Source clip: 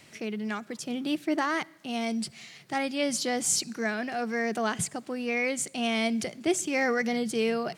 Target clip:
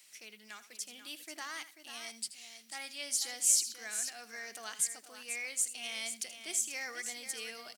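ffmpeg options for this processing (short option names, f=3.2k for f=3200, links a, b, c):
-af "aderivative,aecho=1:1:80|489:0.2|0.316"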